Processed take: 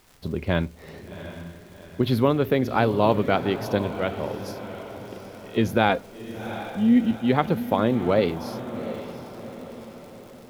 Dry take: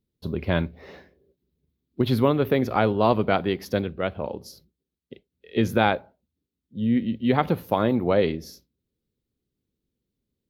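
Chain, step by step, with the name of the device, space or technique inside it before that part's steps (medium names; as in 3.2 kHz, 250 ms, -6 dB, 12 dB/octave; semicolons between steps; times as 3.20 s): warped LP (warped record 33 1/3 rpm, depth 100 cents; crackle 110 per s -39 dBFS; pink noise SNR 32 dB); 5.89–7.11 s: comb 4.2 ms, depth 75%; echo that smears into a reverb 743 ms, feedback 50%, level -11.5 dB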